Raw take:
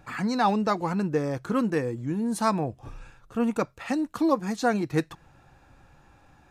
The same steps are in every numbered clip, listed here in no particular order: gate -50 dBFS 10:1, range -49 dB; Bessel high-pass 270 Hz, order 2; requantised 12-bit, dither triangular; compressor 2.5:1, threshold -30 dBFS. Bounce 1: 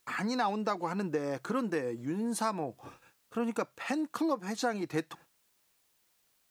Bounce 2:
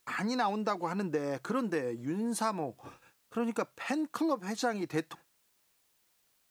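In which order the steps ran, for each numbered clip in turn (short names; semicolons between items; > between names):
Bessel high-pass > gate > requantised > compressor; Bessel high-pass > compressor > gate > requantised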